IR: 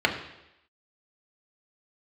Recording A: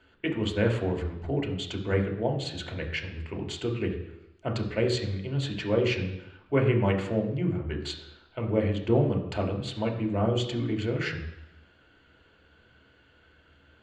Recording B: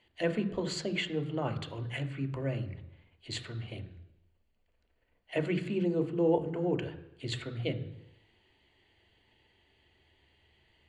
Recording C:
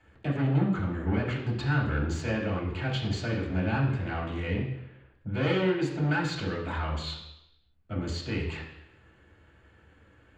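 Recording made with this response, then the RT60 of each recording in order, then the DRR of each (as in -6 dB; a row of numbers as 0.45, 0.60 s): A; 0.85, 0.85, 0.85 s; 1.0, 7.5, -6.5 dB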